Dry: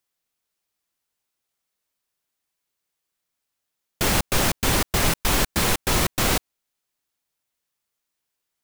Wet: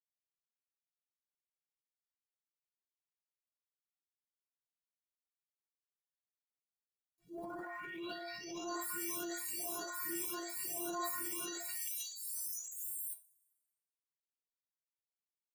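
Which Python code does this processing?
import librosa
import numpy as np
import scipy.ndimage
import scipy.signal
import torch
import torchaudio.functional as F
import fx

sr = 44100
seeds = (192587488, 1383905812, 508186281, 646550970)

y = fx.spec_delay(x, sr, highs='late', ms=899)
y = fx.filter_lfo_notch(y, sr, shape='saw_up', hz=1.6, low_hz=610.0, high_hz=3800.0, q=0.85)
y = fx.stretch_vocoder_free(y, sr, factor=1.8)
y = fx.peak_eq(y, sr, hz=3500.0, db=-8.0, octaves=0.5)
y = fx.quant_dither(y, sr, seeds[0], bits=10, dither='none')
y = scipy.signal.sosfilt(scipy.signal.butter(2, 140.0, 'highpass', fs=sr, output='sos'), y)
y = fx.low_shelf(y, sr, hz=430.0, db=-6.0)
y = fx.stiff_resonator(y, sr, f0_hz=340.0, decay_s=0.33, stiffness=0.008)
y = fx.rev_double_slope(y, sr, seeds[1], early_s=0.47, late_s=1.6, knee_db=-19, drr_db=19.5)
y = fx.transient(y, sr, attack_db=-6, sustain_db=9)
y = y * 10.0 ** (4.5 / 20.0)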